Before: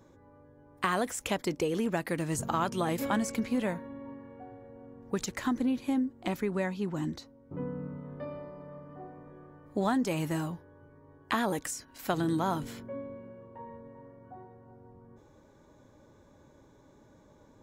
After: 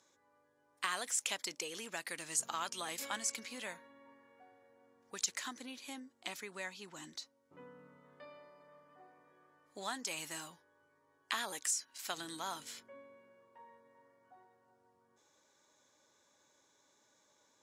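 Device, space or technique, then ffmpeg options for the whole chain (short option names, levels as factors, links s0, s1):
piezo pickup straight into a mixer: -af "lowpass=7200,aderivative,volume=2.24"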